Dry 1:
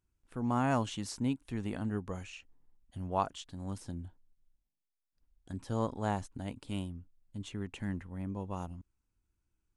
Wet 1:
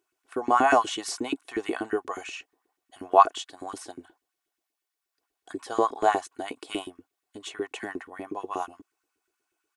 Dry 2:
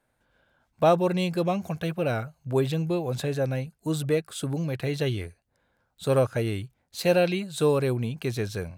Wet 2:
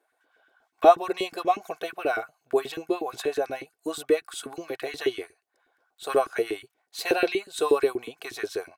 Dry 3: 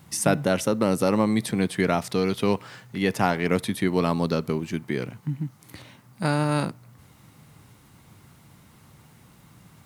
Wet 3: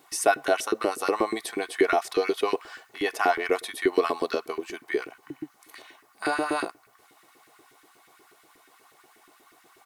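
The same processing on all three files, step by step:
auto-filter high-pass saw up 8.3 Hz 310–1,900 Hz
comb filter 2.7 ms, depth 57%
loudness normalisation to −27 LKFS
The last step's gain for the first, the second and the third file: +8.0, −1.5, −3.5 decibels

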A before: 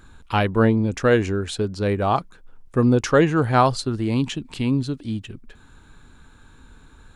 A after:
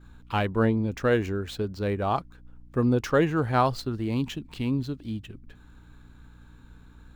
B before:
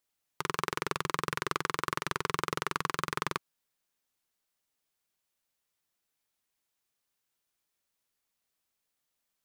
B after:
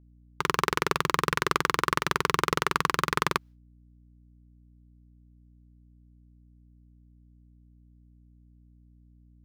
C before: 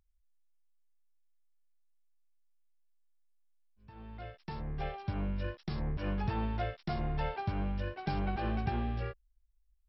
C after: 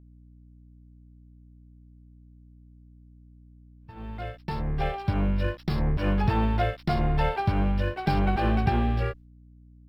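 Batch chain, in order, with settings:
running median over 5 samples
downward expander −49 dBFS
mains hum 60 Hz, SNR 24 dB
loudness normalisation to −27 LKFS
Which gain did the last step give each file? −5.5, +7.5, +10.0 decibels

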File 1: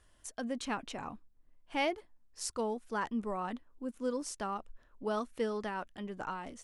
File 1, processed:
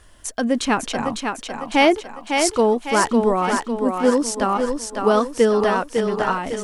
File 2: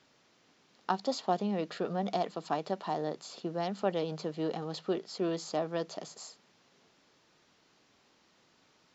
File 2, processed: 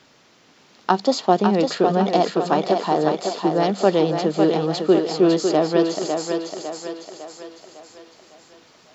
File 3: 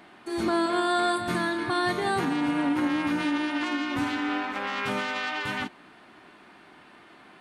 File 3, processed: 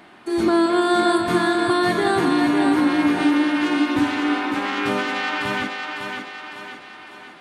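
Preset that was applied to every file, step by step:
dynamic equaliser 350 Hz, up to +5 dB, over −43 dBFS, Q 2.1
feedback echo with a high-pass in the loop 553 ms, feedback 51%, high-pass 240 Hz, level −4.5 dB
loudness normalisation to −20 LKFS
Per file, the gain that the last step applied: +16.0, +12.0, +4.0 decibels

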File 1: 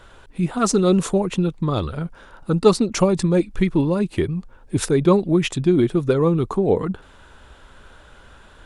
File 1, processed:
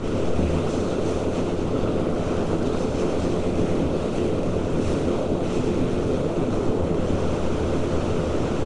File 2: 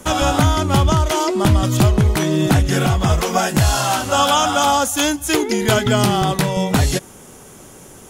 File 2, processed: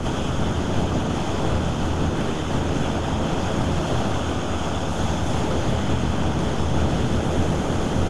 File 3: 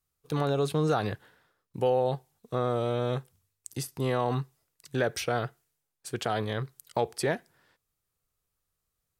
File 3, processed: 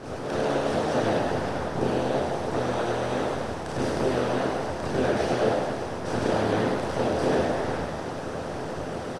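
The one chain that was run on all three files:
compressor on every frequency bin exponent 0.2
four-comb reverb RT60 0.52 s, combs from 25 ms, DRR −5 dB
downward compressor, threshold −5 dBFS
resonators tuned to a chord F2 major, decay 0.25 s
dynamic equaliser 1,100 Hz, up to −3 dB, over −33 dBFS, Q 1.1
low-pass filter 7,600 Hz 12 dB per octave
harmonic and percussive parts rebalanced harmonic −17 dB
spectral tilt −2 dB per octave
echo with shifted repeats 103 ms, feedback 54%, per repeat +77 Hz, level −4.5 dB
normalise the peak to −9 dBFS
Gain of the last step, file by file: −1.0, −0.5, +6.5 decibels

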